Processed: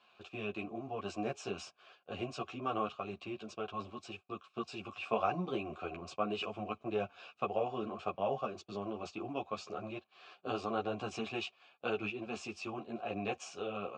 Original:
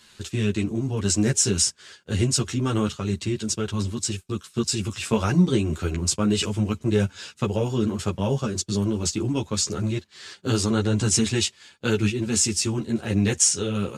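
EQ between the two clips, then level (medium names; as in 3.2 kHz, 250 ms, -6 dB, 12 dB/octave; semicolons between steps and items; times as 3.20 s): vowel filter a; distance through air 83 m; treble shelf 6.3 kHz -6 dB; +5.5 dB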